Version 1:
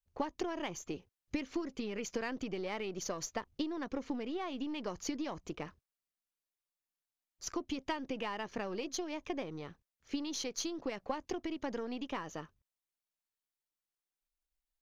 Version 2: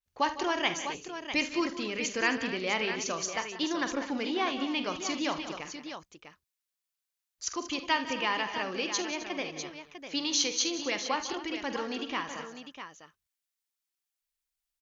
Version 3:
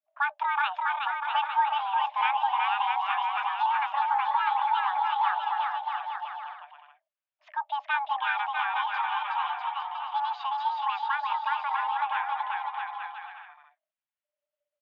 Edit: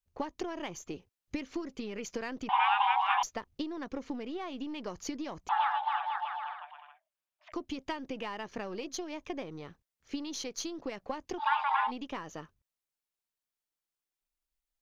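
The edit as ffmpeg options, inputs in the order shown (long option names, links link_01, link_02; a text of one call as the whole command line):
ffmpeg -i take0.wav -i take1.wav -i take2.wav -filter_complex "[2:a]asplit=3[link_01][link_02][link_03];[0:a]asplit=4[link_04][link_05][link_06][link_07];[link_04]atrim=end=2.492[link_08];[link_01]atrim=start=2.488:end=3.232[link_09];[link_05]atrim=start=3.228:end=5.492[link_10];[link_02]atrim=start=5.488:end=7.522[link_11];[link_06]atrim=start=7.518:end=11.43[link_12];[link_03]atrim=start=11.37:end=11.92[link_13];[link_07]atrim=start=11.86[link_14];[link_08][link_09]acrossfade=duration=0.004:curve1=hsin:curve2=hsin[link_15];[link_15][link_10]acrossfade=duration=0.004:curve1=hsin:curve2=hsin[link_16];[link_16][link_11]acrossfade=duration=0.004:curve1=hsin:curve2=hsin[link_17];[link_17][link_12]acrossfade=duration=0.004:curve1=hsin:curve2=hsin[link_18];[link_18][link_13]acrossfade=duration=0.06:curve1=tri:curve2=tri[link_19];[link_19][link_14]acrossfade=duration=0.06:curve1=tri:curve2=tri" out.wav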